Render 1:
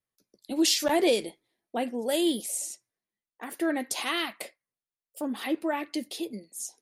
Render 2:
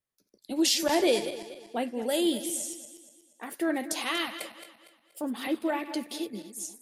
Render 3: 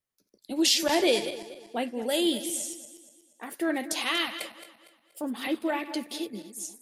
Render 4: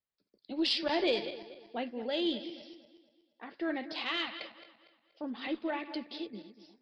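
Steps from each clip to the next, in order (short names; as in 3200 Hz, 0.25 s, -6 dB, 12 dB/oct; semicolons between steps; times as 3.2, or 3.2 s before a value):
regenerating reverse delay 0.119 s, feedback 60%, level -11.5 dB; gain -1 dB
dynamic EQ 3100 Hz, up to +4 dB, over -41 dBFS, Q 0.79
downsampling 11025 Hz; added harmonics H 2 -23 dB, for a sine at -11.5 dBFS; gain -6 dB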